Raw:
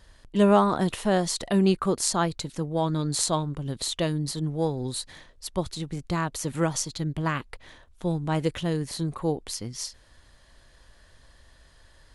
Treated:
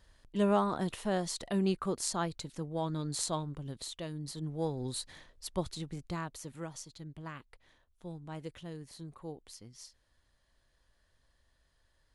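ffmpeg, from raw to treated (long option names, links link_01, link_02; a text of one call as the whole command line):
ffmpeg -i in.wav -af "afade=type=out:start_time=3.59:duration=0.43:silence=0.501187,afade=type=in:start_time=4.02:duration=0.89:silence=0.354813,afade=type=out:start_time=5.64:duration=0.94:silence=0.281838" out.wav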